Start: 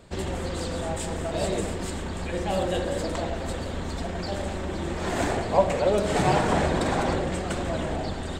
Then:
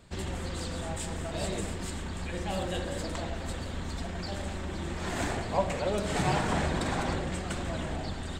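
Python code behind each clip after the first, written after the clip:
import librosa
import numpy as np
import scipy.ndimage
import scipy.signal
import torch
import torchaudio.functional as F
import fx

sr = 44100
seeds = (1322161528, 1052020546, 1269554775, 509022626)

y = fx.peak_eq(x, sr, hz=500.0, db=-6.0, octaves=1.7)
y = y * librosa.db_to_amplitude(-3.0)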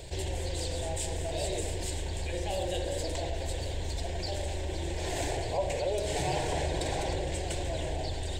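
y = fx.fixed_phaser(x, sr, hz=520.0, stages=4)
y = fx.env_flatten(y, sr, amount_pct=50)
y = y * librosa.db_to_amplitude(-2.5)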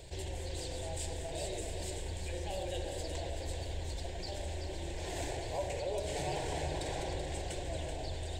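y = x + 10.0 ** (-7.5 / 20.0) * np.pad(x, (int(382 * sr / 1000.0), 0))[:len(x)]
y = y * librosa.db_to_amplitude(-6.5)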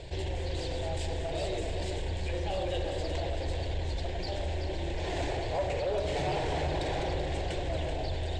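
y = scipy.signal.sosfilt(scipy.signal.butter(2, 4200.0, 'lowpass', fs=sr, output='sos'), x)
y = 10.0 ** (-30.5 / 20.0) * np.tanh(y / 10.0 ** (-30.5 / 20.0))
y = y * librosa.db_to_amplitude(7.5)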